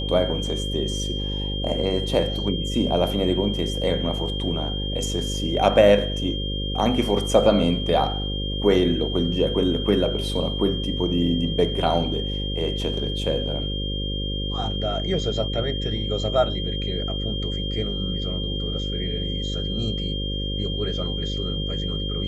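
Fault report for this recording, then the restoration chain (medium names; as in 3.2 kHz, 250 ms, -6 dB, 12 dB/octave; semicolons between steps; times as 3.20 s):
buzz 50 Hz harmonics 11 -28 dBFS
whine 3.2 kHz -30 dBFS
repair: band-stop 3.2 kHz, Q 30; de-hum 50 Hz, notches 11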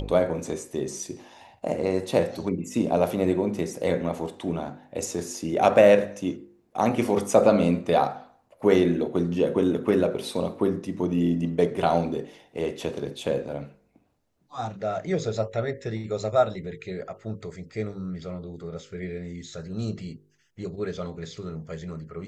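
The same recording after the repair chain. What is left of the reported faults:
nothing left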